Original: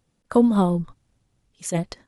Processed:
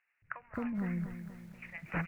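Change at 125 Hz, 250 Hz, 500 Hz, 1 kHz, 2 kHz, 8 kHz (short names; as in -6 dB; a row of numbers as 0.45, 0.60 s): -12.0 dB, -16.0 dB, -23.0 dB, -16.0 dB, n/a, under -30 dB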